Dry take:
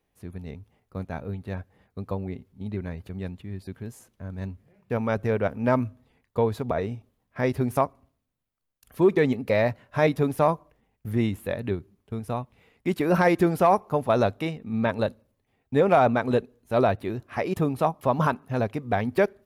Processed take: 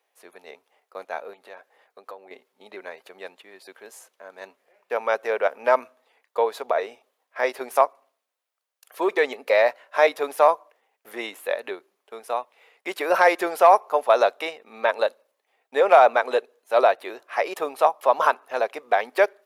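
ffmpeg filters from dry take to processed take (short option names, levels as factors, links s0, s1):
-filter_complex "[0:a]asettb=1/sr,asplit=3[s0][s1][s2];[s0]atrim=end=1.334[s3];[s1]atrim=start=1.33:end=2.31,asetpts=PTS-STARTPTS,afade=t=in:d=0.004:c=qsin,afade=t=out:st=0.976:d=0.004:c=qsin,acompressor=threshold=0.0158:ratio=5:attack=3.2:release=140:knee=1:detection=peak[s4];[s2]atrim=start=2.306[s5];[s3][s4]acrossfade=d=0.004:c1=hsin:c2=qsin[s6];[s6][s5]acrossfade=d=0.004:c1=qsin:c2=hsin,highpass=f=510:w=0.5412,highpass=f=510:w=1.3066,highshelf=f=11000:g=-4,volume=2"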